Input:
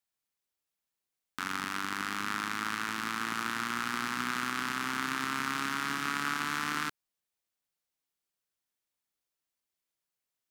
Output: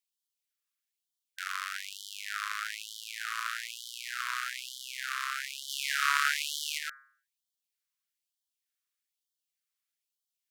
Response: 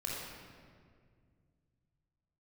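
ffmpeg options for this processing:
-filter_complex "[0:a]asplit=3[link_01][link_02][link_03];[link_01]afade=type=out:start_time=5.68:duration=0.02[link_04];[link_02]acontrast=76,afade=type=in:start_time=5.68:duration=0.02,afade=type=out:start_time=6.77:duration=0.02[link_05];[link_03]afade=type=in:start_time=6.77:duration=0.02[link_06];[link_04][link_05][link_06]amix=inputs=3:normalize=0,bandreject=frequency=136.5:width_type=h:width=4,bandreject=frequency=273:width_type=h:width=4,bandreject=frequency=409.5:width_type=h:width=4,bandreject=frequency=546:width_type=h:width=4,bandreject=frequency=682.5:width_type=h:width=4,bandreject=frequency=819:width_type=h:width=4,bandreject=frequency=955.5:width_type=h:width=4,bandreject=frequency=1092:width_type=h:width=4,bandreject=frequency=1228.5:width_type=h:width=4,bandreject=frequency=1365:width_type=h:width=4,bandreject=frequency=1501.5:width_type=h:width=4,bandreject=frequency=1638:width_type=h:width=4,bandreject=frequency=1774.5:width_type=h:width=4,bandreject=frequency=1911:width_type=h:width=4,bandreject=frequency=2047.5:width_type=h:width=4,bandreject=frequency=2184:width_type=h:width=4,bandreject=frequency=2320.5:width_type=h:width=4,afftfilt=real='re*gte(b*sr/1024,970*pow(3000/970,0.5+0.5*sin(2*PI*1.1*pts/sr)))':imag='im*gte(b*sr/1024,970*pow(3000/970,0.5+0.5*sin(2*PI*1.1*pts/sr)))':win_size=1024:overlap=0.75"

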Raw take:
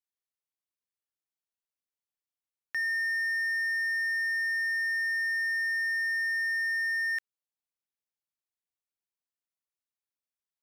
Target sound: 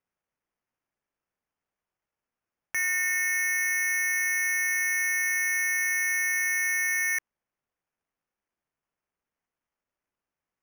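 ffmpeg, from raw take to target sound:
ffmpeg -i in.wav -af "acrusher=samples=11:mix=1:aa=0.000001,volume=3dB" out.wav

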